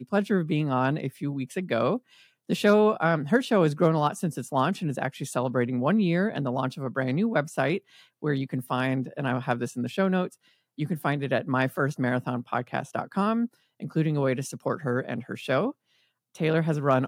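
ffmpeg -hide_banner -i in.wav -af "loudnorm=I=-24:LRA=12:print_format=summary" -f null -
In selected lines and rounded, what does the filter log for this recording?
Input Integrated:    -26.9 LUFS
Input True Peak:      -8.5 dBTP
Input LRA:             3.6 LU
Input Threshold:     -37.2 LUFS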